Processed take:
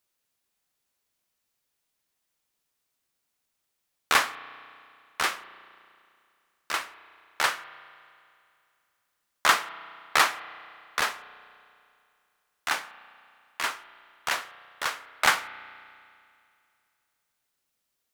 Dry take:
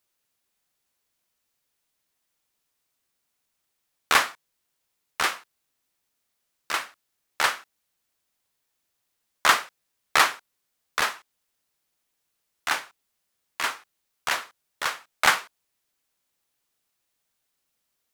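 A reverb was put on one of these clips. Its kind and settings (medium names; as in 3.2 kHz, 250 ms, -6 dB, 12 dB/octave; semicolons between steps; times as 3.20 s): spring tank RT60 2.4 s, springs 33 ms, chirp 75 ms, DRR 15 dB; trim -2 dB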